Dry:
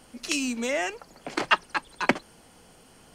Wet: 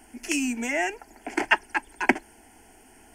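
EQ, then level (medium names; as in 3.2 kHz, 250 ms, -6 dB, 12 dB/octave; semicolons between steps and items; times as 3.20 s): static phaser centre 790 Hz, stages 8; +4.0 dB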